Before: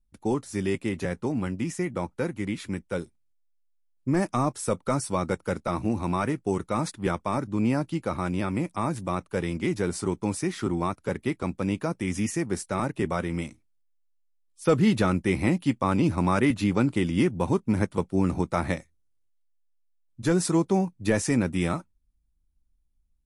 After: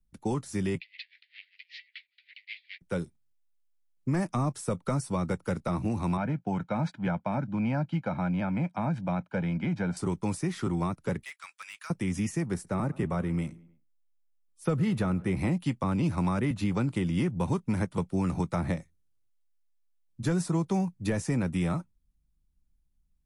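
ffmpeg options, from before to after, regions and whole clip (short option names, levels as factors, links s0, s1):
-filter_complex "[0:a]asettb=1/sr,asplit=3[s0][s1][s2];[s0]atrim=end=0.804[s3];[s1]atrim=start=0.8:end=2.81,asetpts=PTS-STARTPTS,afade=t=in:d=0.004:c=qsin,afade=t=out:st=2.006:d=0.004:c=qsin,asplit=2[s4][s5];[s5]highpass=f=720:p=1,volume=44.7,asoftclip=type=tanh:threshold=0.168[s6];[s4][s6]amix=inputs=2:normalize=0,lowpass=f=2900:p=1,volume=0.501,asuperpass=centerf=3000:order=12:qfactor=1.1,aeval=exprs='val(0)*pow(10,-36*(0.5-0.5*cos(2*PI*5.2*n/s))/20)':c=same[s7];[s2]atrim=start=2.806[s8];[s3][s7]acrossfade=d=0.004:c1=hsin:c2=qsin[s9];[s9][s8]acrossfade=d=0.004:c1=qsin:c2=hsin,asettb=1/sr,asplit=3[s10][s11][s12];[s10]atrim=end=6.174[s13];[s11]atrim=start=6.17:end=9.97,asetpts=PTS-STARTPTS,afade=t=in:d=0.004:c=qsin,afade=t=out:st=3.796:d=0.004:c=qsin,highpass=160,lowpass=2700,aecho=1:1:1.3:0.69,atrim=end_sample=167580[s14];[s12]atrim=start=9.966[s15];[s13][s14]acrossfade=d=0.004:c1=hsin:c2=qsin[s16];[s16][s15]acrossfade=d=0.004:c1=qsin:c2=hsin,asettb=1/sr,asplit=3[s17][s18][s19];[s17]atrim=end=11.234[s20];[s18]atrim=start=11.23:end=11.9,asetpts=PTS-STARTPTS,afade=t=in:d=0.004:c=qsin,afade=t=out:st=0.666:d=0.004:c=qsin,highpass=f=1400:w=0.5412,highpass=f=1400:w=1.3066,asoftclip=type=hard:threshold=0.0224[s21];[s19]atrim=start=11.896[s22];[s20][s21]acrossfade=d=0.004:c1=hsin:c2=qsin[s23];[s23][s22]acrossfade=d=0.004:c1=qsin:c2=hsin,asettb=1/sr,asplit=3[s24][s25][s26];[s24]atrim=end=12.544[s27];[s25]atrim=start=12.54:end=15.37,asetpts=PTS-STARTPTS,afade=t=in:d=0.004:c=qsin,afade=t=out:st=2.826:d=0.004:c=qsin,equalizer=f=4900:w=0.41:g=-8,asplit=2[s28][s29];[s29]adelay=101,lowpass=f=4100:p=1,volume=0.0631,asplit=2[s30][s31];[s31]adelay=101,lowpass=f=4100:p=1,volume=0.52,asplit=2[s32][s33];[s33]adelay=101,lowpass=f=4100:p=1,volume=0.52[s34];[s28][s30][s32][s34]amix=inputs=4:normalize=0,atrim=end_sample=124803[s35];[s26]atrim=start=15.366[s36];[s27][s35]acrossfade=d=0.004:c1=hsin:c2=qsin[s37];[s37][s36]acrossfade=d=0.004:c1=qsin:c2=hsin,equalizer=f=160:t=o:w=0.81:g=7,acrossover=split=150|540|1100[s38][s39][s40][s41];[s38]acompressor=threshold=0.0355:ratio=4[s42];[s39]acompressor=threshold=0.0282:ratio=4[s43];[s40]acompressor=threshold=0.0178:ratio=4[s44];[s41]acompressor=threshold=0.0112:ratio=4[s45];[s42][s43][s44][s45]amix=inputs=4:normalize=0,volume=0.891"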